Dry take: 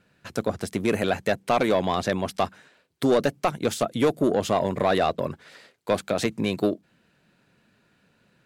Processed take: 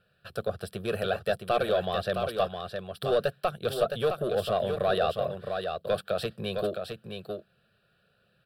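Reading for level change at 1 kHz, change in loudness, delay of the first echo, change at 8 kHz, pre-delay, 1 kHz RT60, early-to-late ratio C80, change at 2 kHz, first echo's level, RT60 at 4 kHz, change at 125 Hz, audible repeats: -4.5 dB, -5.0 dB, 0.663 s, -11.5 dB, none, none, none, -5.0 dB, -6.0 dB, none, -5.0 dB, 1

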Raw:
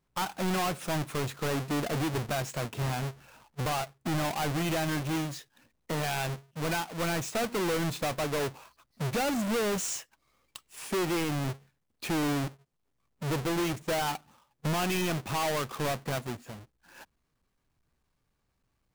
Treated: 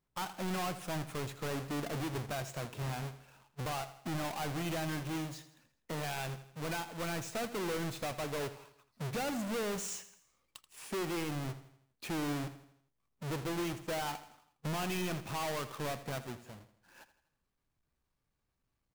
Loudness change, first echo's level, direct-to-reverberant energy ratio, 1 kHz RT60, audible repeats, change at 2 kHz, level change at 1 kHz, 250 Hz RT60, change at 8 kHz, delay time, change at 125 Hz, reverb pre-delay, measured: -6.5 dB, -14.0 dB, none, none, 4, -7.0 dB, -7.0 dB, none, -7.0 dB, 82 ms, -6.5 dB, none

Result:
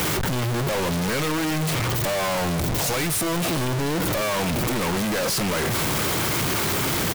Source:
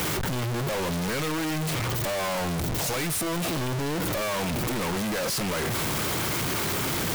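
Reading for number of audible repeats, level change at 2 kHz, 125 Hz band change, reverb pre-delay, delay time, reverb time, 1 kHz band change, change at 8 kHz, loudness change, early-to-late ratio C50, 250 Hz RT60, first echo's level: 1, +4.0 dB, +4.0 dB, none, 0.434 s, none, +4.0 dB, +4.0 dB, +4.0 dB, none, none, -17.0 dB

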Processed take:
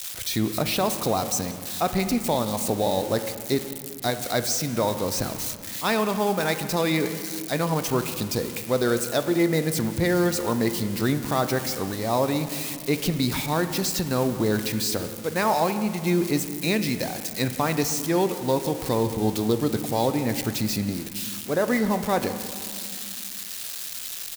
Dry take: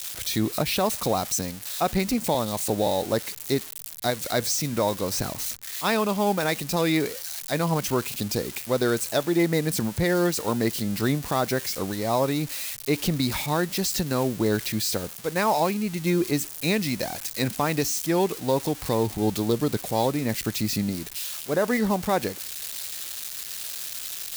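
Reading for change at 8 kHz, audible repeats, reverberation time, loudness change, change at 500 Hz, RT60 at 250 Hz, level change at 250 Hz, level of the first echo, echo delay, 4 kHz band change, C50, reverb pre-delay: 0.0 dB, 1, 2.3 s, +0.5 dB, +0.5 dB, 3.1 s, +1.0 dB, -21.0 dB, 0.18 s, 0.0 dB, 10.0 dB, 4 ms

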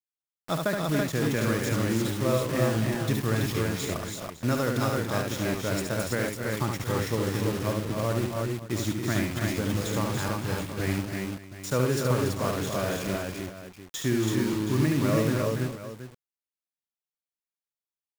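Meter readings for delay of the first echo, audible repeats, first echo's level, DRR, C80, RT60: 72 ms, 5, -4.5 dB, none, none, none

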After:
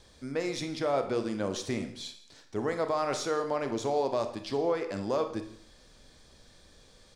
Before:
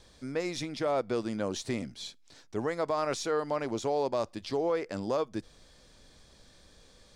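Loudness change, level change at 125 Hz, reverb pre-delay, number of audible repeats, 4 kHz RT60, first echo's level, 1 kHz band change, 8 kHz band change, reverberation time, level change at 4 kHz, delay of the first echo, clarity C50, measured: +1.0 dB, +0.5 dB, 29 ms, 1, 0.55 s, -21.0 dB, +1.0 dB, +0.5 dB, 0.60 s, +0.5 dB, 0.164 s, 9.5 dB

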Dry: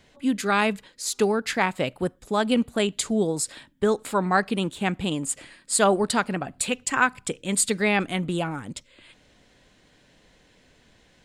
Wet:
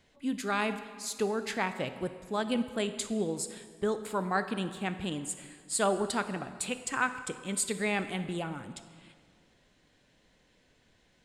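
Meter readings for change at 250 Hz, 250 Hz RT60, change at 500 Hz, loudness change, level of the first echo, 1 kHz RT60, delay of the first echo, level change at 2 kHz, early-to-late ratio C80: -8.0 dB, 1.9 s, -8.0 dB, -8.0 dB, none, 1.8 s, none, -8.0 dB, 12.0 dB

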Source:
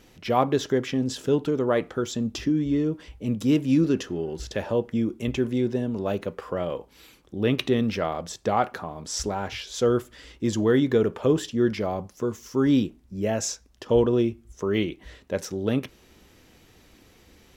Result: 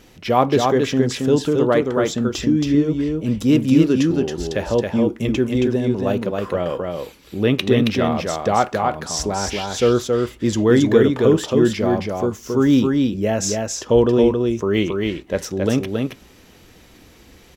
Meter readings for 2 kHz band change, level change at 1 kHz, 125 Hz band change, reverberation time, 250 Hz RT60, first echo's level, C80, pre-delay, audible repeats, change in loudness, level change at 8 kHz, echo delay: +7.0 dB, +7.0 dB, +7.0 dB, none, none, -3.5 dB, none, none, 1, +7.0 dB, +7.0 dB, 0.273 s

